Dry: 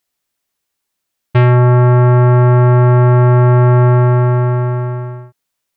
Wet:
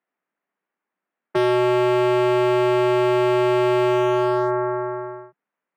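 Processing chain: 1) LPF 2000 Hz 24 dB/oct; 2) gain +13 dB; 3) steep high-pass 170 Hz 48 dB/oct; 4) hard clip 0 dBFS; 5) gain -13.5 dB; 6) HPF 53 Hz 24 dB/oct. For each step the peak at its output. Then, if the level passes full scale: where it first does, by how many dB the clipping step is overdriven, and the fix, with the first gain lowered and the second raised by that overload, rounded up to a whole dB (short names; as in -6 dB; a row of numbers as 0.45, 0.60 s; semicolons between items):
-4.5, +8.5, +8.5, 0.0, -13.5, -10.0 dBFS; step 2, 8.5 dB; step 2 +4 dB, step 5 -4.5 dB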